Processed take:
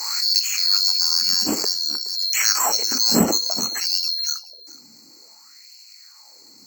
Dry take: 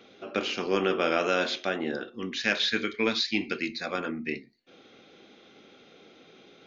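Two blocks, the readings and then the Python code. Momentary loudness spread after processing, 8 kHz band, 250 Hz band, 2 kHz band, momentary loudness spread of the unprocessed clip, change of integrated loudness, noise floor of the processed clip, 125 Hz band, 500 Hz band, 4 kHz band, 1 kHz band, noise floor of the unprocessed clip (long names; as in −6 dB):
6 LU, can't be measured, +4.0 dB, −2.0 dB, 9 LU, +10.5 dB, −49 dBFS, +7.0 dB, −3.5 dB, +14.5 dB, +3.0 dB, −56 dBFS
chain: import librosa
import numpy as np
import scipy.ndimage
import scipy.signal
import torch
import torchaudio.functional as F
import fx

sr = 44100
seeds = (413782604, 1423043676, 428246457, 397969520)

p1 = fx.band_swap(x, sr, width_hz=4000)
p2 = fx.low_shelf(p1, sr, hz=390.0, db=9.0)
p3 = fx.filter_lfo_highpass(p2, sr, shape='sine', hz=0.56, low_hz=220.0, high_hz=2700.0, q=4.2)
p4 = p3 + fx.echo_single(p3, sr, ms=421, db=-19.5, dry=0)
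p5 = np.repeat(scipy.signal.resample_poly(p4, 1, 2), 2)[:len(p4)]
p6 = fx.pre_swell(p5, sr, db_per_s=35.0)
y = F.gain(torch.from_numpy(p6), 5.5).numpy()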